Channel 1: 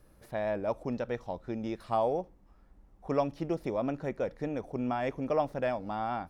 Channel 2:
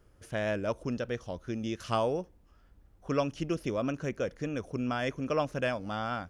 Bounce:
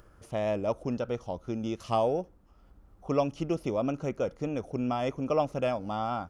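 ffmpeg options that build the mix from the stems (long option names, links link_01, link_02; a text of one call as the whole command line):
ffmpeg -i stem1.wav -i stem2.wav -filter_complex "[0:a]lowpass=frequency=1400:width_type=q:width=4.3,volume=-6dB[link_01];[1:a]volume=-2.5dB[link_02];[link_01][link_02]amix=inputs=2:normalize=0,acompressor=mode=upward:threshold=-50dB:ratio=2.5" out.wav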